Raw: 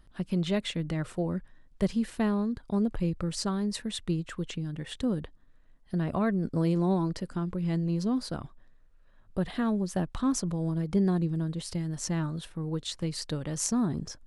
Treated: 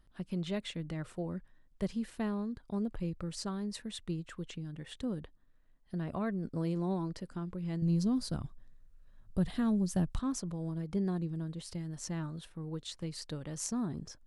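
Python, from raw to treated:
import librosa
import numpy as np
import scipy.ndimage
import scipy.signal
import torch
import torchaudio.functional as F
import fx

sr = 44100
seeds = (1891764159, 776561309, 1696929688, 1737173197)

y = fx.bass_treble(x, sr, bass_db=10, treble_db=8, at=(7.82, 10.19))
y = y * 10.0 ** (-7.5 / 20.0)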